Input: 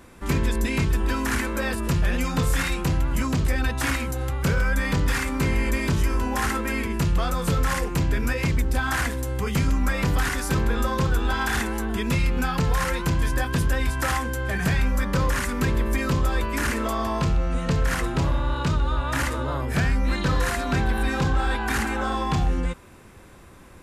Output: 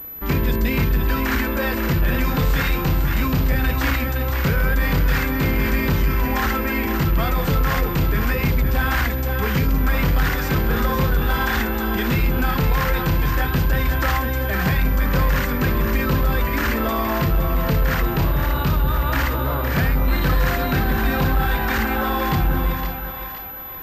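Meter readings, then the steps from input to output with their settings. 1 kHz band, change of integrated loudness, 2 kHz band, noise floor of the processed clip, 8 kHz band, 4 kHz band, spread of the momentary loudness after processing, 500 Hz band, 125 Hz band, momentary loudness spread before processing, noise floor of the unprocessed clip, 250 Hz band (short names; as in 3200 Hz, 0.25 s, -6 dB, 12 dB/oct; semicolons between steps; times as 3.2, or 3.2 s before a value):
+4.0 dB, +4.0 dB, +3.5 dB, -25 dBFS, -4.5 dB, +3.0 dB, 2 LU, +4.0 dB, +4.0 dB, 2 LU, -46 dBFS, +3.5 dB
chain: split-band echo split 590 Hz, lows 0.185 s, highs 0.515 s, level -7 dB; sample leveller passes 1; pulse-width modulation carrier 12000 Hz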